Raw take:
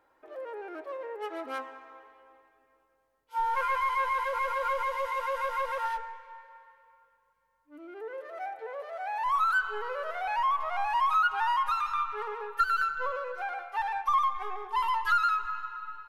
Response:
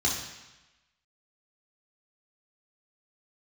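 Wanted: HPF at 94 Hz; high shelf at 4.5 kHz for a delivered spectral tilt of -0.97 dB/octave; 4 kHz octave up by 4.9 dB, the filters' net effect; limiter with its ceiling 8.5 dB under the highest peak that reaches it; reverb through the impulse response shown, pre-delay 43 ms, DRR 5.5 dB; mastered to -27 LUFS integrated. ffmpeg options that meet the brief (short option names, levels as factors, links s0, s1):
-filter_complex "[0:a]highpass=94,equalizer=f=4000:t=o:g=9,highshelf=f=4500:g=-5,alimiter=limit=0.0708:level=0:latency=1,asplit=2[s0][s1];[1:a]atrim=start_sample=2205,adelay=43[s2];[s1][s2]afir=irnorm=-1:irlink=0,volume=0.178[s3];[s0][s3]amix=inputs=2:normalize=0,volume=1.5"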